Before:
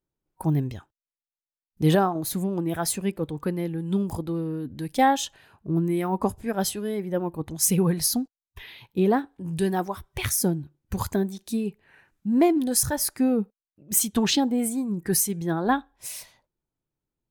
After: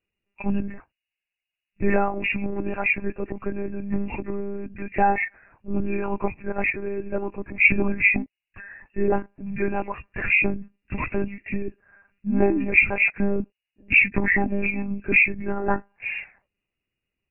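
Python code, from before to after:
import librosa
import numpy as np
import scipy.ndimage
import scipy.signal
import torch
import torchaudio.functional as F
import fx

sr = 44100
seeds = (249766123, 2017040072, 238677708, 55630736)

y = fx.freq_compress(x, sr, knee_hz=1500.0, ratio=4.0)
y = fx.lpc_monotone(y, sr, seeds[0], pitch_hz=200.0, order=10)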